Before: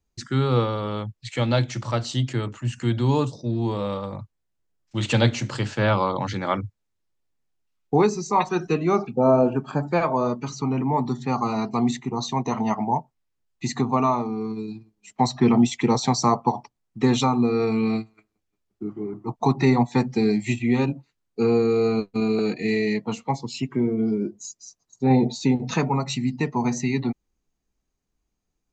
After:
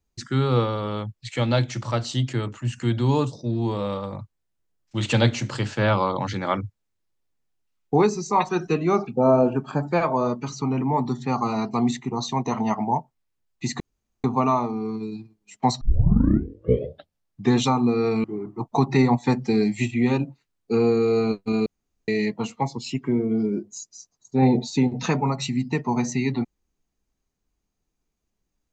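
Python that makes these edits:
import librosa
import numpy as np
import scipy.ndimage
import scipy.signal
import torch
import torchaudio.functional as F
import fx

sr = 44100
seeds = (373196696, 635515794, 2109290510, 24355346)

y = fx.edit(x, sr, fx.insert_room_tone(at_s=13.8, length_s=0.44),
    fx.tape_start(start_s=15.37, length_s=1.76),
    fx.cut(start_s=17.8, length_s=1.12),
    fx.room_tone_fill(start_s=22.34, length_s=0.42), tone=tone)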